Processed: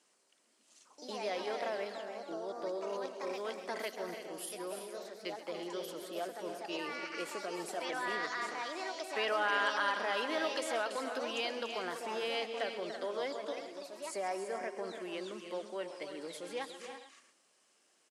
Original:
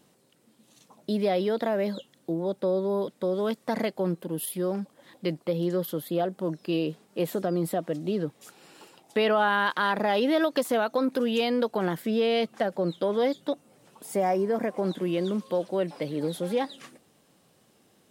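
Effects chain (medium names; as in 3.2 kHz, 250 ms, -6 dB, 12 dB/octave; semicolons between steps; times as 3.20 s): tilt EQ +2 dB/octave; on a send: multi-tap echo 132/286/334/404/443 ms -15.5/-10/-10/-18.5/-18.5 dB; on the sum: ever faster or slower copies 107 ms, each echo +3 st, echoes 2, each echo -6 dB; cabinet simulation 410–8700 Hz, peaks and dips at 510 Hz -4 dB, 790 Hz -4 dB, 3.7 kHz -7 dB; trim -7 dB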